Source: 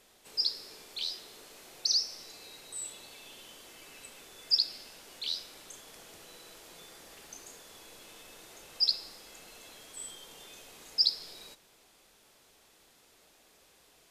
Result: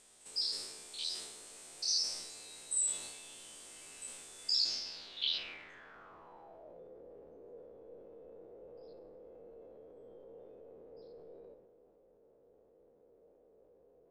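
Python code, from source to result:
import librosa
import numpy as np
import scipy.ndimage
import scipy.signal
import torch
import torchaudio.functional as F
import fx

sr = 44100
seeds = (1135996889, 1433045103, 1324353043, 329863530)

y = fx.spec_steps(x, sr, hold_ms=50)
y = fx.filter_sweep_lowpass(y, sr, from_hz=8500.0, to_hz=490.0, start_s=4.45, end_s=6.87, q=5.7)
y = fx.transient(y, sr, attack_db=0, sustain_db=6)
y = y * 10.0 ** (-4.0 / 20.0)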